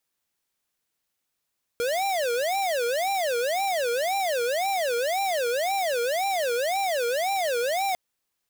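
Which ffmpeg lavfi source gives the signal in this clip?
ffmpeg -f lavfi -i "aevalsrc='0.0531*(2*lt(mod((631.5*t-161.5/(2*PI*1.9)*sin(2*PI*1.9*t)),1),0.5)-1)':duration=6.15:sample_rate=44100" out.wav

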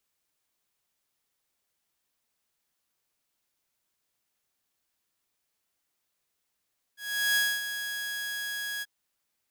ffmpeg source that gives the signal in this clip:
ffmpeg -f lavfi -i "aevalsrc='0.106*(2*mod(1660*t,1)-1)':duration=1.884:sample_rate=44100,afade=type=in:duration=0.388,afade=type=out:start_time=0.388:duration=0.247:silence=0.316,afade=type=out:start_time=1.85:duration=0.034" out.wav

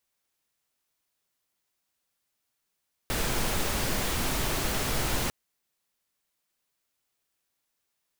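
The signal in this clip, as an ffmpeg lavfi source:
ffmpeg -f lavfi -i "anoisesrc=color=pink:amplitude=0.204:duration=2.2:sample_rate=44100:seed=1" out.wav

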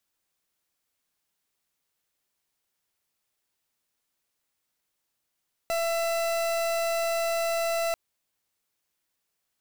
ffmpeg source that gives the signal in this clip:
ffmpeg -f lavfi -i "aevalsrc='0.0447*(2*lt(mod(669*t,1),0.4)-1)':duration=2.24:sample_rate=44100" out.wav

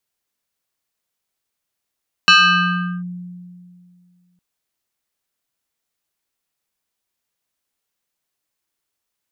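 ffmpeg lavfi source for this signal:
ffmpeg -f lavfi -i "aevalsrc='0.531*pow(10,-3*t/2.34)*sin(2*PI*178*t+2.7*clip(1-t/0.75,0,1)*sin(2*PI*7.86*178*t))':duration=2.11:sample_rate=44100" out.wav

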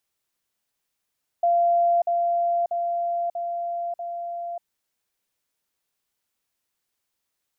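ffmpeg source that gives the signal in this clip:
ffmpeg -f lavfi -i "aevalsrc='pow(10,(-16.5-3*floor(t/0.64))/20)*sin(2*PI*690*t)*clip(min(mod(t,0.64),0.59-mod(t,0.64))/0.005,0,1)':duration=3.2:sample_rate=44100" out.wav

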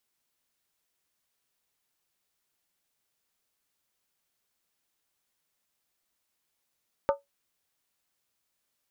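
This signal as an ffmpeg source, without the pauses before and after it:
ffmpeg -f lavfi -i "aevalsrc='0.133*pow(10,-3*t/0.16)*sin(2*PI*562*t)+0.075*pow(10,-3*t/0.127)*sin(2*PI*895.8*t)+0.0422*pow(10,-3*t/0.109)*sin(2*PI*1200.4*t)+0.0237*pow(10,-3*t/0.106)*sin(2*PI*1290.4*t)+0.0133*pow(10,-3*t/0.098)*sin(2*PI*1491*t)':duration=0.63:sample_rate=44100" out.wav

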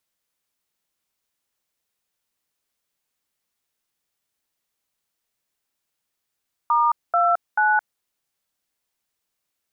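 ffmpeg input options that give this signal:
ffmpeg -f lavfi -i "aevalsrc='0.126*clip(min(mod(t,0.437),0.218-mod(t,0.437))/0.002,0,1)*(eq(floor(t/0.437),0)*(sin(2*PI*941*mod(t,0.437))+sin(2*PI*1209*mod(t,0.437)))+eq(floor(t/0.437),1)*(sin(2*PI*697*mod(t,0.437))+sin(2*PI*1336*mod(t,0.437)))+eq(floor(t/0.437),2)*(sin(2*PI*852*mod(t,0.437))+sin(2*PI*1477*mod(t,0.437))))':duration=1.311:sample_rate=44100" out.wav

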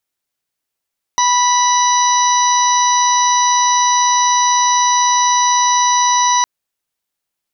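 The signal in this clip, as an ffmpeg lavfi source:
ffmpeg -f lavfi -i "aevalsrc='0.251*sin(2*PI*982*t)+0.0668*sin(2*PI*1964*t)+0.0316*sin(2*PI*2946*t)+0.0794*sin(2*PI*3928*t)+0.0299*sin(2*PI*4910*t)+0.15*sin(2*PI*5892*t)':duration=5.26:sample_rate=44100" out.wav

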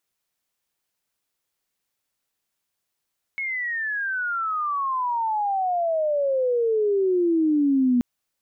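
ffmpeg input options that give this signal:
ffmpeg -f lavfi -i "aevalsrc='pow(10,(-25+9*t/4.63)/20)*sin(2*PI*2200*4.63/log(240/2200)*(exp(log(240/2200)*t/4.63)-1))':duration=4.63:sample_rate=44100" out.wav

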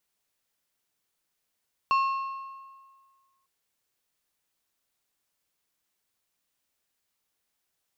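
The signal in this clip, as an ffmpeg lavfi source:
ffmpeg -f lavfi -i "aevalsrc='0.112*pow(10,-3*t/1.7)*sin(2*PI*1080*t)+0.0355*pow(10,-3*t/1.291)*sin(2*PI*2700*t)+0.0112*pow(10,-3*t/1.122)*sin(2*PI*4320*t)+0.00355*pow(10,-3*t/1.049)*sin(2*PI*5400*t)+0.00112*pow(10,-3*t/0.97)*sin(2*PI*7020*t)':duration=1.55:sample_rate=44100" out.wav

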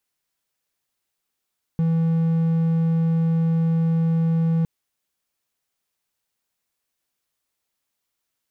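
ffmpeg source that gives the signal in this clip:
ffmpeg -f lavfi -i "aevalsrc='0.178*(1-4*abs(mod(164*t+0.25,1)-0.5))':duration=2.86:sample_rate=44100" out.wav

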